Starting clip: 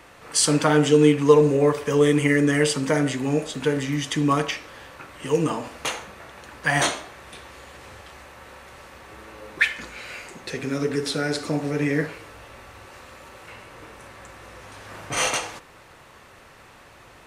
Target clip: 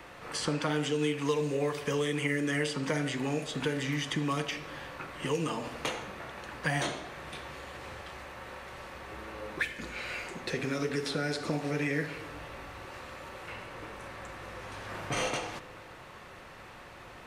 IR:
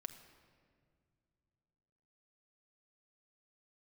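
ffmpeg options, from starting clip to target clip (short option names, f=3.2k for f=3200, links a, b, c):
-filter_complex "[0:a]acrossover=split=550|2200|6700[a][b][c][d];[a]acompressor=threshold=-32dB:ratio=4[e];[b]acompressor=threshold=-38dB:ratio=4[f];[c]acompressor=threshold=-37dB:ratio=4[g];[d]acompressor=threshold=-44dB:ratio=4[h];[e][f][g][h]amix=inputs=4:normalize=0,asplit=2[i][j];[1:a]atrim=start_sample=2205,lowpass=5.6k[k];[j][k]afir=irnorm=-1:irlink=0,volume=1.5dB[l];[i][l]amix=inputs=2:normalize=0,volume=-4.5dB"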